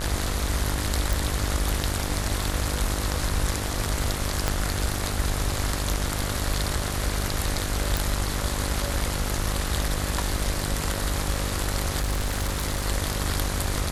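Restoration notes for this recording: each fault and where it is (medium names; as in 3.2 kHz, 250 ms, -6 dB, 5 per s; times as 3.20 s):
buzz 50 Hz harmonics 35 -30 dBFS
1.13 s: pop
4.48 s: pop -8 dBFS
7.97 s: pop
11.99–12.86 s: clipped -21.5 dBFS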